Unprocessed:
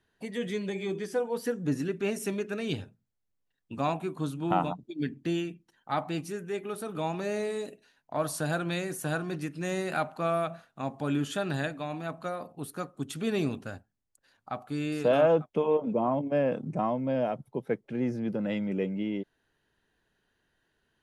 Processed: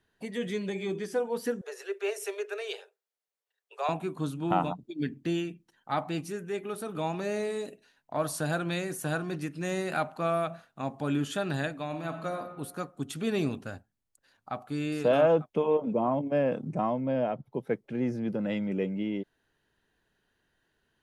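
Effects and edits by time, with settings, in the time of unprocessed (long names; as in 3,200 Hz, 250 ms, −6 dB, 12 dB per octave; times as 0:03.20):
0:01.61–0:03.89: Chebyshev high-pass filter 390 Hz, order 8
0:11.86–0:12.39: thrown reverb, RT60 1.2 s, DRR 6 dB
0:17.01–0:17.52: moving average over 5 samples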